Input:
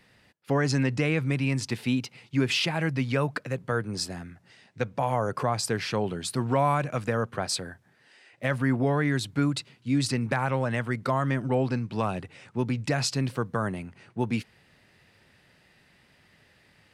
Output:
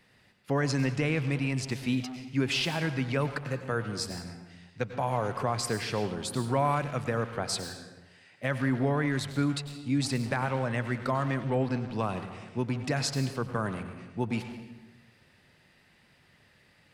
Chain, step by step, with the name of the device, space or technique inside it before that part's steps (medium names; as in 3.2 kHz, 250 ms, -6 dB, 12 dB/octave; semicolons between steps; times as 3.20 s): saturated reverb return (on a send at -4.5 dB: reverberation RT60 0.95 s, pre-delay 89 ms + saturation -30 dBFS, distortion -7 dB); on the sum: trim -3 dB